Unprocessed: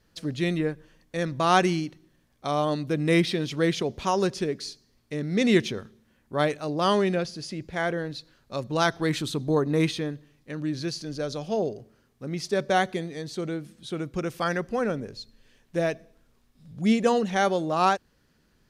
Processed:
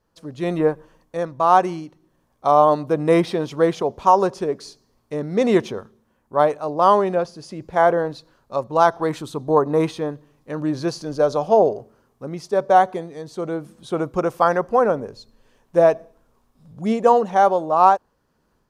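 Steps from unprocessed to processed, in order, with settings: ten-band EQ 500 Hz +4 dB, 1000 Hz +10 dB, 2000 Hz -5 dB, 4000 Hz -4 dB; AGC gain up to 10.5 dB; dynamic EQ 790 Hz, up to +7 dB, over -26 dBFS, Q 0.75; gain -7 dB

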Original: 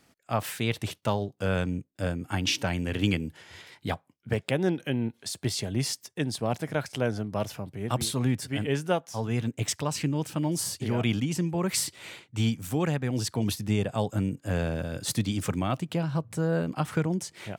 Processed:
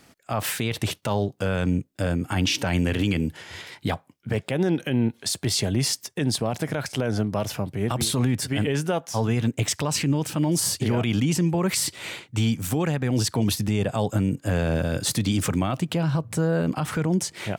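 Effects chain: limiter -22.5 dBFS, peak gain reduction 10.5 dB; gain +8.5 dB

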